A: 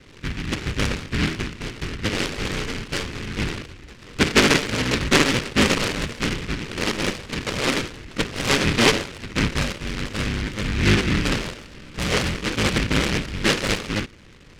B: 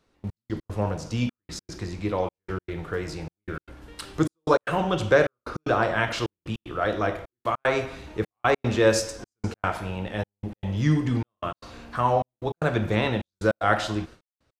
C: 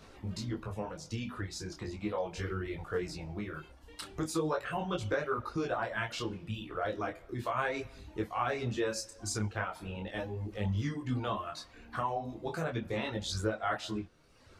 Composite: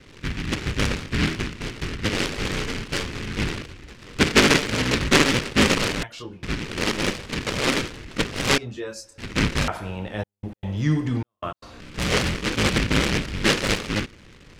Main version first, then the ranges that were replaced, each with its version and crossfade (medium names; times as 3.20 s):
A
6.03–6.43 s: from C
8.58–9.18 s: from C
9.68–11.80 s: from B